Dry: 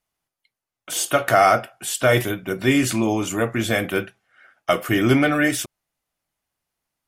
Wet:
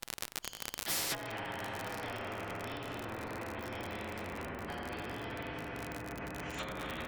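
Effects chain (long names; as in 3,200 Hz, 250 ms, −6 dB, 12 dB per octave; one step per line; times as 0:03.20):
partials spread apart or drawn together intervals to 117%
rectangular room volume 180 cubic metres, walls hard, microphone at 0.73 metres
delay with pitch and tempo change per echo 335 ms, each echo −5 semitones, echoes 2, each echo −6 dB
treble cut that deepens with the level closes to 740 Hz, closed at −17 dBFS
automatic gain control gain up to 12 dB
surface crackle 56 per second −31 dBFS
downward compressor 8 to 1, threshold −25 dBFS, peak gain reduction 18 dB
every bin compressed towards the loudest bin 4 to 1
level +4 dB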